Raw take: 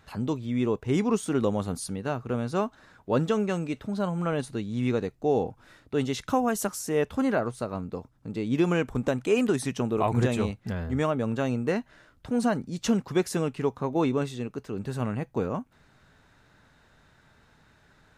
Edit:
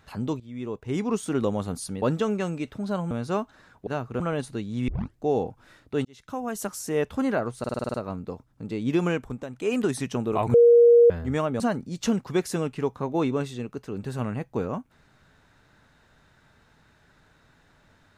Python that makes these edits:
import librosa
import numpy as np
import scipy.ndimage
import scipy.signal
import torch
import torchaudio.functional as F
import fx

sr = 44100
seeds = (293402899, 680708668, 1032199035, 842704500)

y = fx.edit(x, sr, fx.fade_in_from(start_s=0.4, length_s=0.88, floor_db=-14.0),
    fx.swap(start_s=2.02, length_s=0.33, other_s=3.11, other_length_s=1.09),
    fx.tape_start(start_s=4.88, length_s=0.3),
    fx.fade_in_span(start_s=6.05, length_s=0.8),
    fx.stutter(start_s=7.59, slice_s=0.05, count=8),
    fx.fade_down_up(start_s=8.74, length_s=0.74, db=-10.5, fade_s=0.35),
    fx.bleep(start_s=10.19, length_s=0.56, hz=473.0, db=-11.0),
    fx.cut(start_s=11.25, length_s=1.16), tone=tone)